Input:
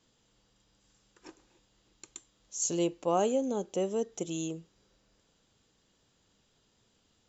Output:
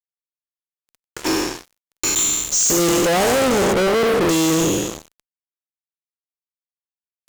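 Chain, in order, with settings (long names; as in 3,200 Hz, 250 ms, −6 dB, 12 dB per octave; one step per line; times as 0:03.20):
peak hold with a decay on every bin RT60 1.11 s
0:03.73–0:04.29: Chebyshev band-pass filter 110–680 Hz, order 3
fuzz pedal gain 51 dB, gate −56 dBFS
level −2.5 dB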